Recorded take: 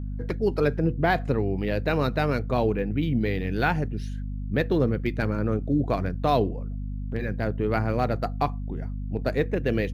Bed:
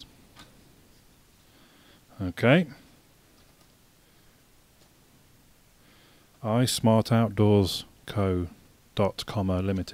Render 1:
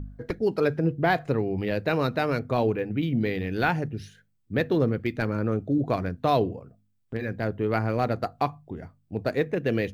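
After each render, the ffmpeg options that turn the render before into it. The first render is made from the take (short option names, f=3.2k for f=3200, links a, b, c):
-af "bandreject=f=50:t=h:w=4,bandreject=f=100:t=h:w=4,bandreject=f=150:t=h:w=4,bandreject=f=200:t=h:w=4,bandreject=f=250:t=h:w=4"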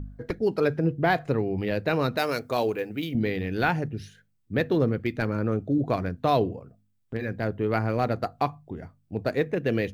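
-filter_complex "[0:a]asettb=1/sr,asplit=3[a][b][c];[a]atrim=end=2.174[d];[b]atrim=start=2.17:end=3.15,asetpts=PTS-STARTPTS,afade=t=in:d=0.004:c=qsin,afade=t=out:st=0.976:d=0.004:c=qsin,bass=f=250:g=-10,treble=f=4k:g=12[e];[c]atrim=start=3.146[f];[d][e]acrossfade=d=0.004:c1=hsin:c2=qsin[g];[g][f]acrossfade=d=0.004:c1=qsin:c2=hsin"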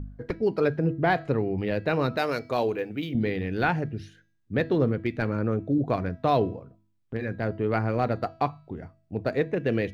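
-af "highshelf=f=6.5k:g=-11.5,bandreject=f=326.4:t=h:w=4,bandreject=f=652.8:t=h:w=4,bandreject=f=979.2:t=h:w=4,bandreject=f=1.3056k:t=h:w=4,bandreject=f=1.632k:t=h:w=4,bandreject=f=1.9584k:t=h:w=4,bandreject=f=2.2848k:t=h:w=4,bandreject=f=2.6112k:t=h:w=4,bandreject=f=2.9376k:t=h:w=4,bandreject=f=3.264k:t=h:w=4,bandreject=f=3.5904k:t=h:w=4,bandreject=f=3.9168k:t=h:w=4,bandreject=f=4.2432k:t=h:w=4,bandreject=f=4.5696k:t=h:w=4,bandreject=f=4.896k:t=h:w=4,bandreject=f=5.2224k:t=h:w=4,bandreject=f=5.5488k:t=h:w=4,bandreject=f=5.8752k:t=h:w=4,bandreject=f=6.2016k:t=h:w=4,bandreject=f=6.528k:t=h:w=4,bandreject=f=6.8544k:t=h:w=4"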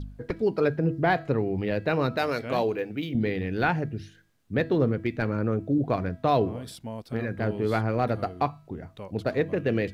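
-filter_complex "[1:a]volume=-16dB[a];[0:a][a]amix=inputs=2:normalize=0"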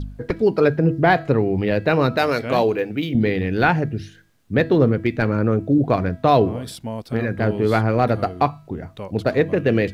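-af "volume=7.5dB"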